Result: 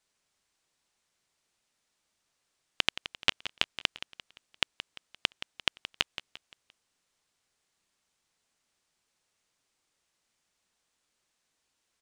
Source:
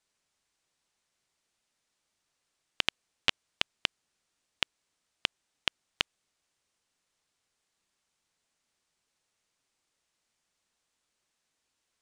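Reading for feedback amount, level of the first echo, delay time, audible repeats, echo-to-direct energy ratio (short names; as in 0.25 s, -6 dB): 42%, -13.0 dB, 0.173 s, 3, -12.0 dB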